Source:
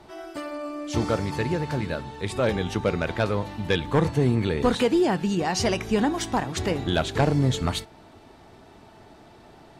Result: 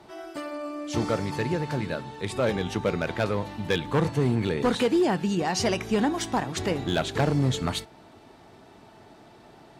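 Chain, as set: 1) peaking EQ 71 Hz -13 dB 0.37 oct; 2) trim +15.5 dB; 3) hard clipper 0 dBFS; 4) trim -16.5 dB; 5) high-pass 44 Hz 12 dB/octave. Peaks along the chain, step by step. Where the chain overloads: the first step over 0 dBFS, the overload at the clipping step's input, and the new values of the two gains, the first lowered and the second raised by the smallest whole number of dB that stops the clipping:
-10.5 dBFS, +5.0 dBFS, 0.0 dBFS, -16.5 dBFS, -12.5 dBFS; step 2, 5.0 dB; step 2 +10.5 dB, step 4 -11.5 dB

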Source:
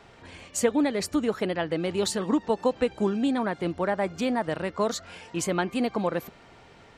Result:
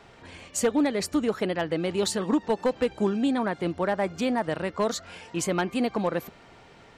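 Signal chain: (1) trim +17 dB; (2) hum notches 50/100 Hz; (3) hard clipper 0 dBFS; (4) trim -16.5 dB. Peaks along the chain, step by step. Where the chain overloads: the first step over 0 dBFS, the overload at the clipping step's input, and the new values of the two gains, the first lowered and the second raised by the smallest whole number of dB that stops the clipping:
+7.0 dBFS, +7.0 dBFS, 0.0 dBFS, -16.5 dBFS; step 1, 7.0 dB; step 1 +10 dB, step 4 -9.5 dB

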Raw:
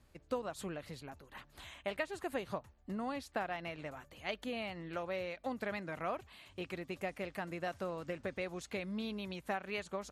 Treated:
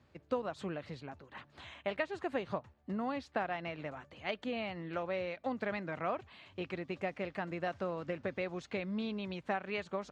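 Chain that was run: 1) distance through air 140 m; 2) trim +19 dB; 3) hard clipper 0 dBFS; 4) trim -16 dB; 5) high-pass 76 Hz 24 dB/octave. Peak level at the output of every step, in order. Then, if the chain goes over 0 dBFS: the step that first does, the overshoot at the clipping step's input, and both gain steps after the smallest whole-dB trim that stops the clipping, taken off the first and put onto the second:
-24.0 dBFS, -5.0 dBFS, -5.0 dBFS, -21.0 dBFS, -21.0 dBFS; nothing clips

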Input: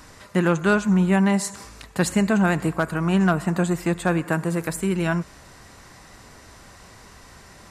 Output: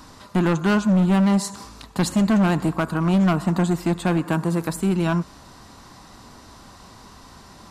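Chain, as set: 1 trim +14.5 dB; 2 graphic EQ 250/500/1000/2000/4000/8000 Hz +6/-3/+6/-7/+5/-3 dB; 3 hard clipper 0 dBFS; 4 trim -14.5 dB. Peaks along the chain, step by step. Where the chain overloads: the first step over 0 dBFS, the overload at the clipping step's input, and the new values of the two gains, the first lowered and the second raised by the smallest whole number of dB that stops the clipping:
+5.0 dBFS, +8.5 dBFS, 0.0 dBFS, -14.5 dBFS; step 1, 8.5 dB; step 1 +5.5 dB, step 4 -5.5 dB

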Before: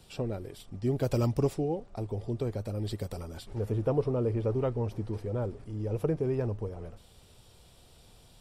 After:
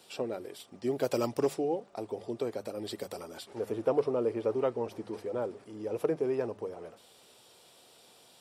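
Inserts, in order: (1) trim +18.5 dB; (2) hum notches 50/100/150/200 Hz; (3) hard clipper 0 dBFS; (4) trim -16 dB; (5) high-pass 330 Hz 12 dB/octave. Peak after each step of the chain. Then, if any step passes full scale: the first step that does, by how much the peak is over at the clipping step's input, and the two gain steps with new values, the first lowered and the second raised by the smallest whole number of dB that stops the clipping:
+3.5 dBFS, +3.0 dBFS, 0.0 dBFS, -16.0 dBFS, -15.5 dBFS; step 1, 3.0 dB; step 1 +15.5 dB, step 4 -13 dB

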